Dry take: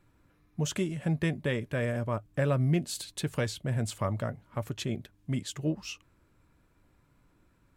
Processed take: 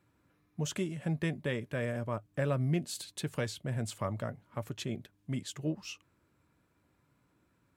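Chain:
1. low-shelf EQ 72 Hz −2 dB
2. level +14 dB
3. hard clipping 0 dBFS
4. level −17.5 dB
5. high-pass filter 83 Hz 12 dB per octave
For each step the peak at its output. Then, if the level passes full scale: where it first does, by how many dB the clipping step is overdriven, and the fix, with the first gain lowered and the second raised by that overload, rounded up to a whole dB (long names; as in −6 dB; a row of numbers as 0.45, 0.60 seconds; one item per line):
−16.5, −2.5, −2.5, −20.0, −18.5 dBFS
no step passes full scale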